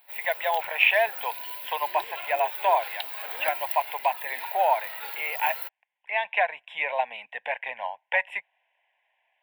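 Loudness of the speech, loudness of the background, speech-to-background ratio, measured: −27.0 LKFS, −34.0 LKFS, 7.0 dB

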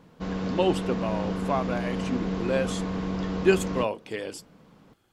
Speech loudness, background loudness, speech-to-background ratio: −29.0 LKFS, −31.0 LKFS, 2.0 dB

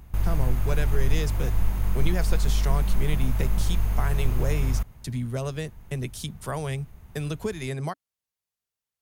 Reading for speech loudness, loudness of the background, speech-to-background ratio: −32.5 LKFS, −28.0 LKFS, −4.5 dB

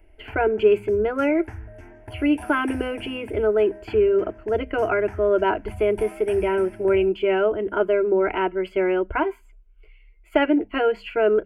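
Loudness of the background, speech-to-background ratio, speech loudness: −41.0 LKFS, 18.5 dB, −22.5 LKFS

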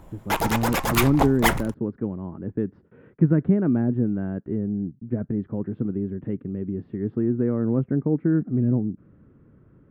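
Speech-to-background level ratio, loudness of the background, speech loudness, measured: −0.5 dB, −24.5 LKFS, −25.0 LKFS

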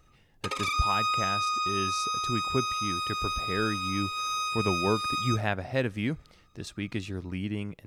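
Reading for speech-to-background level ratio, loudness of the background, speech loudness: −3.5 dB, −29.5 LKFS, −33.0 LKFS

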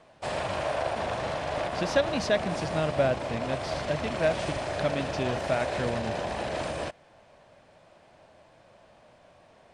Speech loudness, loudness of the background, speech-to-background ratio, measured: −31.0 LKFS, −32.0 LKFS, 1.0 dB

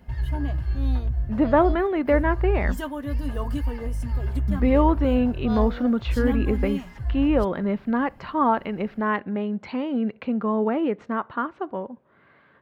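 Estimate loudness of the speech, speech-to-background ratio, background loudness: −24.5 LKFS, 4.0 dB, −28.5 LKFS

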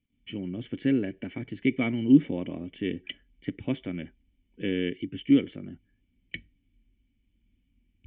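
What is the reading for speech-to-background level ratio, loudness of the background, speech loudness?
15.0 dB, −43.0 LKFS, −28.0 LKFS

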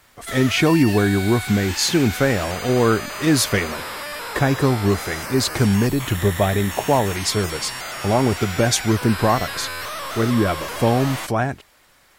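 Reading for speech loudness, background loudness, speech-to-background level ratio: −20.0 LKFS, −29.0 LKFS, 9.0 dB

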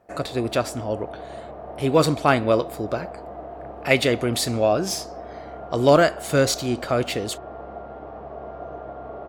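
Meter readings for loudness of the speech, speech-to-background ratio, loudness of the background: −22.0 LKFS, 15.5 dB, −37.5 LKFS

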